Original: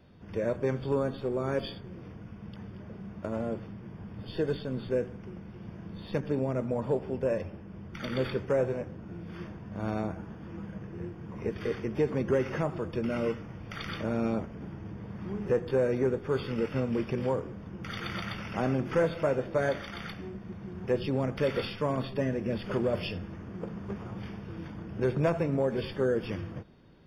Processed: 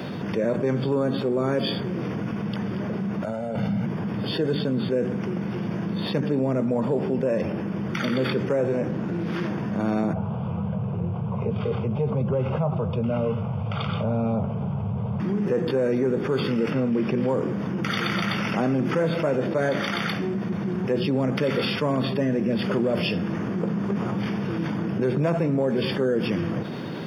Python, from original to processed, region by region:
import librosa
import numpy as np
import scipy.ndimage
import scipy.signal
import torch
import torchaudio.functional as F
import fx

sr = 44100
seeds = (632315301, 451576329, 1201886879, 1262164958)

y = fx.chain(x, sr, fx.comb(ms=1.4, depth=0.94),
    fx.over_compress(threshold_db=-38.0, ratio=-0.5),
    fx.notch(hz=1400.0, q=27.0), at=(3.24, 3.86))
y = fx.chain(y, sr, fx.doubler(ms=27.0, db=-11.0),
    fx.doppler_dist(depth_ms=0.15), at=(8.9, 9.49))
y = fx.chain(y, sr, fx.lowpass(hz=3100.0, slope=24),
    fx.peak_eq(hz=93.0, db=13.0, octaves=1.0),
    fx.fixed_phaser(hz=750.0, stages=4), at=(10.13, 15.2))
y = fx.chain(y, sr, fx.highpass(hz=50.0, slope=12),
    fx.high_shelf(hz=5000.0, db=-9.0), at=(16.7, 17.29))
y = scipy.signal.sosfilt(scipy.signal.butter(4, 130.0, 'highpass', fs=sr, output='sos'), y)
y = fx.dynamic_eq(y, sr, hz=200.0, q=0.96, threshold_db=-41.0, ratio=4.0, max_db=5)
y = fx.env_flatten(y, sr, amount_pct=70)